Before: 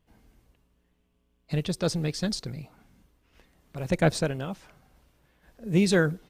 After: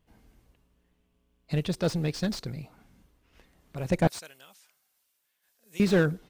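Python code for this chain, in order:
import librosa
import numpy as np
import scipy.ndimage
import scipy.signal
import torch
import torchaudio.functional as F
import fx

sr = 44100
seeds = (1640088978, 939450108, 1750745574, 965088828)

y = fx.differentiator(x, sr, at=(4.07, 5.8))
y = fx.slew_limit(y, sr, full_power_hz=83.0)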